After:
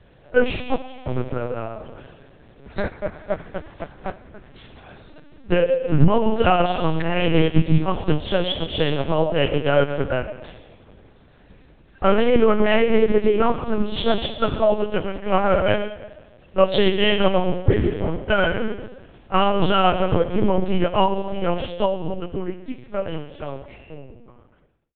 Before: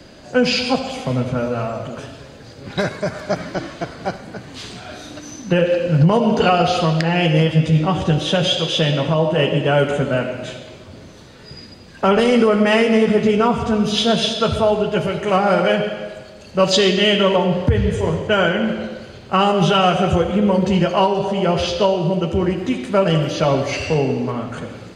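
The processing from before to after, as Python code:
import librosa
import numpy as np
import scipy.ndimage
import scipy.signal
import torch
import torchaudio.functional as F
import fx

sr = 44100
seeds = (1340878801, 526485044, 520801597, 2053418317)

y = fx.fade_out_tail(x, sr, length_s=3.77)
y = fx.lpc_vocoder(y, sr, seeds[0], excitation='pitch_kept', order=8)
y = fx.air_absorb(y, sr, metres=140.0)
y = fx.upward_expand(y, sr, threshold_db=-29.0, expansion=1.5)
y = F.gain(torch.from_numpy(y), 1.5).numpy()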